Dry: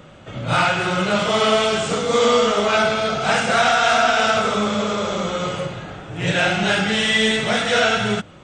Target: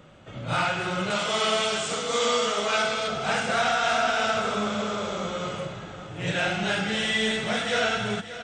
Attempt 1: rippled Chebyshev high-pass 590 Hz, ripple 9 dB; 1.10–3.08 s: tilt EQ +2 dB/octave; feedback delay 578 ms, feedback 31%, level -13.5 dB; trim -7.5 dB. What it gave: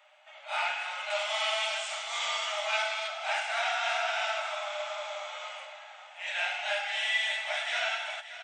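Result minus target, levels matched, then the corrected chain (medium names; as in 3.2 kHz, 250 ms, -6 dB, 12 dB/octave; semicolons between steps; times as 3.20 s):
500 Hz band -4.5 dB
1.10–3.08 s: tilt EQ +2 dB/octave; feedback delay 578 ms, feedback 31%, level -13.5 dB; trim -7.5 dB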